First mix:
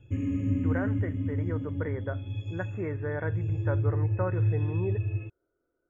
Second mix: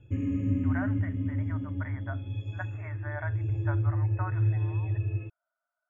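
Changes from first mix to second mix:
speech: add linear-phase brick-wall high-pass 580 Hz
background: add high-shelf EQ 3,400 Hz −5.5 dB

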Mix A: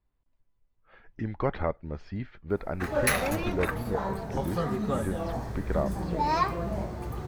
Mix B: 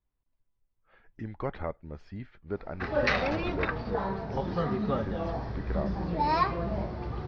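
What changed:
speech −5.5 dB
background: add Butterworth low-pass 5,400 Hz 72 dB per octave

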